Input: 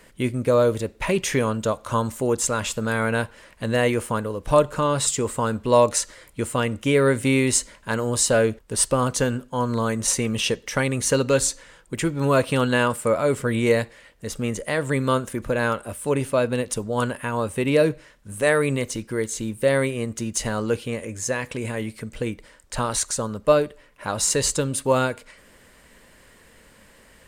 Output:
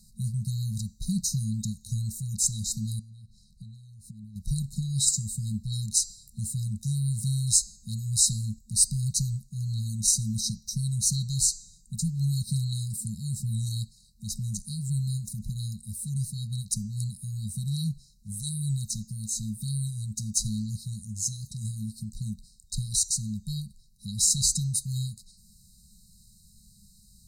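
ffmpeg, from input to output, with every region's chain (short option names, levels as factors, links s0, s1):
-filter_complex "[0:a]asettb=1/sr,asplit=3[s0][s1][s2];[s0]atrim=end=2.994[s3];[s1]atrim=start=2.99:end=4.36,asetpts=PTS-STARTPTS,afade=t=in:d=0.004:c=qsin,afade=t=out:st=1.366:d=0.004:c=qsin,lowpass=f=2900:p=1,acompressor=threshold=0.0158:ratio=12:attack=3.2:release=140:knee=1:detection=peak[s4];[s2]atrim=start=4.356[s5];[s3][s4]acrossfade=d=0.004:c1=hsin:c2=qsin[s6];[s6][s5]acrossfade=d=0.004:c1=qsin:c2=hsin,afftfilt=real='re*(1-between(b*sr/4096,220,3800))':imag='im*(1-between(b*sr/4096,220,3800))':win_size=4096:overlap=0.75,bandreject=f=341.1:t=h:w=4,bandreject=f=682.2:t=h:w=4,bandreject=f=1023.3:t=h:w=4,bandreject=f=1364.4:t=h:w=4,bandreject=f=1705.5:t=h:w=4,bandreject=f=2046.6:t=h:w=4,bandreject=f=2387.7:t=h:w=4,bandreject=f=2728.8:t=h:w=4,bandreject=f=3069.9:t=h:w=4,bandreject=f=3411:t=h:w=4,bandreject=f=3752.1:t=h:w=4,bandreject=f=4093.2:t=h:w=4,bandreject=f=4434.3:t=h:w=4,bandreject=f=4775.4:t=h:w=4,bandreject=f=5116.5:t=h:w=4,bandreject=f=5457.6:t=h:w=4,bandreject=f=5798.7:t=h:w=4,bandreject=f=6139.8:t=h:w=4,bandreject=f=6480.9:t=h:w=4,bandreject=f=6822:t=h:w=4,bandreject=f=7163.1:t=h:w=4,bandreject=f=7504.2:t=h:w=4,bandreject=f=7845.3:t=h:w=4,bandreject=f=8186.4:t=h:w=4"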